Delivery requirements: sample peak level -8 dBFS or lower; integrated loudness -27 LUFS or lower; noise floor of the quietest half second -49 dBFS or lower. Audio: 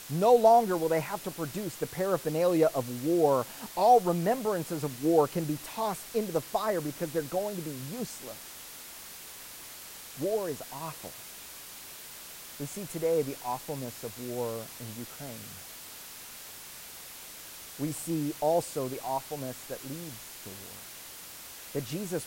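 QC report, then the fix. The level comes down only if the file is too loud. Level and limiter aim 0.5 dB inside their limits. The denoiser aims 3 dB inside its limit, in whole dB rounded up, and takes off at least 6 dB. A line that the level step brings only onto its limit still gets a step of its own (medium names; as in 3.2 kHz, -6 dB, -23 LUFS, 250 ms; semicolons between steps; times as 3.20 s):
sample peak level -11.0 dBFS: pass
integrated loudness -30.0 LUFS: pass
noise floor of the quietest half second -46 dBFS: fail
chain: noise reduction 6 dB, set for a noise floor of -46 dBFS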